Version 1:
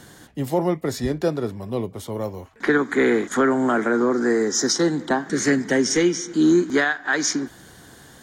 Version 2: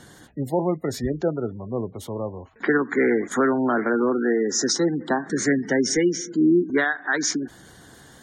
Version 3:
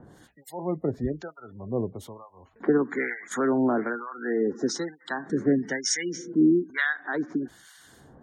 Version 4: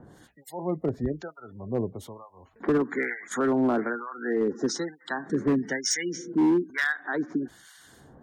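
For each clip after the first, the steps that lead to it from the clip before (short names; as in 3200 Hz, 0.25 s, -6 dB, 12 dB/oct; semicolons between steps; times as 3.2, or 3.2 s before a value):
spectral gate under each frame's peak -25 dB strong; gain -1.5 dB
harmonic tremolo 1.1 Hz, depth 100%, crossover 1100 Hz
overloaded stage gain 18 dB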